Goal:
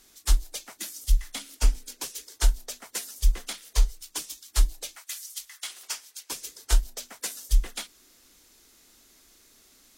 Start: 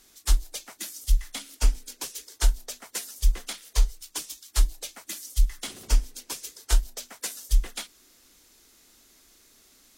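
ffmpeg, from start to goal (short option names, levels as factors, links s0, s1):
-filter_complex "[0:a]asettb=1/sr,asplit=3[s0][s1][s2];[s0]atrim=end=4.964[s3];[s1]atrim=start=4.96:end=6.3,asetpts=PTS-STARTPTS,afade=t=in:d=0.004:c=qsin,afade=t=out:st=1.336:d=0.004:c=qsin,highpass=1100[s4];[s2]atrim=start=6.296[s5];[s3][s4]acrossfade=d=0.004:c1=hsin:c2=qsin[s6];[s6][s5]acrossfade=d=0.004:c1=qsin:c2=hsin"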